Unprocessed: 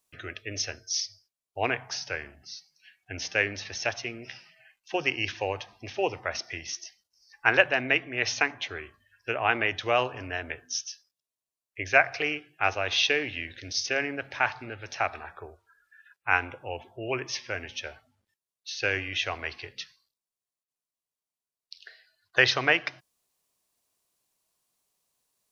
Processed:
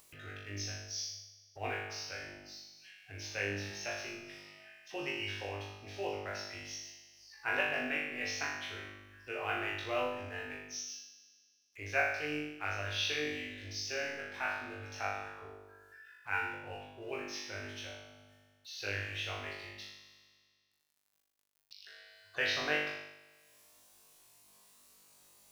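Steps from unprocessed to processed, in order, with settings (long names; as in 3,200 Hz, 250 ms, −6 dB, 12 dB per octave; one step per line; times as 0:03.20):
mu-law and A-law mismatch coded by mu
tuned comb filter 50 Hz, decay 0.86 s, harmonics all, mix 100%
upward compression, threshold −50 dBFS
level +1 dB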